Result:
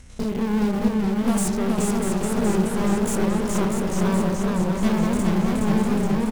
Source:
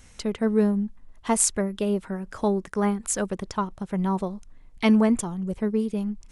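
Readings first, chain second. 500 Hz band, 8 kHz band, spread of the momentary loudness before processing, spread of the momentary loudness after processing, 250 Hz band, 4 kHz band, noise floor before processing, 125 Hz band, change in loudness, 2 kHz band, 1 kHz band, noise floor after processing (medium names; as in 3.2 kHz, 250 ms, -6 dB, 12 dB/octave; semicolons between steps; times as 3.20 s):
+2.0 dB, -2.5 dB, 10 LU, 2 LU, +4.0 dB, +3.0 dB, -51 dBFS, +7.0 dB, +3.0 dB, +3.5 dB, +2.5 dB, -27 dBFS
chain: spectrogram pixelated in time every 100 ms; valve stage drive 36 dB, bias 0.8; spring tank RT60 3.2 s, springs 33 ms, chirp 75 ms, DRR 6 dB; in parallel at -9 dB: bit crusher 6-bit; on the sum: bass shelf 340 Hz +9 dB; hum notches 50/100/150/200 Hz; delay 645 ms -6.5 dB; modulated delay 424 ms, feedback 70%, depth 132 cents, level -3 dB; trim +6.5 dB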